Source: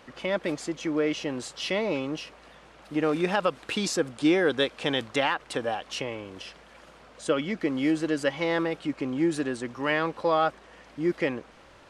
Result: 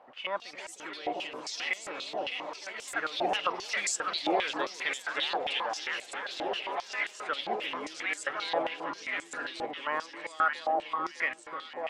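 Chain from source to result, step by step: echo whose repeats swap between lows and highs 305 ms, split 950 Hz, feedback 87%, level -5 dB; ever faster or slower copies 221 ms, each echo +4 st, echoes 2, each echo -6 dB; step-sequenced band-pass 7.5 Hz 750–7600 Hz; trim +5.5 dB

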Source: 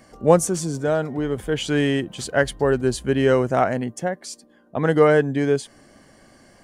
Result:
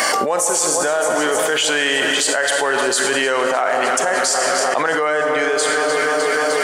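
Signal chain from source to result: high-pass 840 Hz 12 dB/octave; echo whose repeats swap between lows and highs 152 ms, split 1.3 kHz, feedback 84%, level -12.5 dB; on a send at -8.5 dB: reverberation RT60 1.7 s, pre-delay 34 ms; on the sum: dynamic bell 7.7 kHz, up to +5 dB, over -47 dBFS, Q 2.8; level flattener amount 100%

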